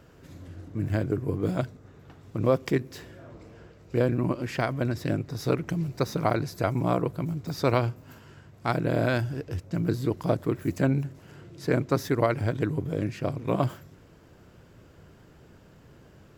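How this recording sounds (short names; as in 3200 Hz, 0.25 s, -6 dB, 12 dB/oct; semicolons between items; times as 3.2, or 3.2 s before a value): noise floor -54 dBFS; spectral tilt -6.0 dB/oct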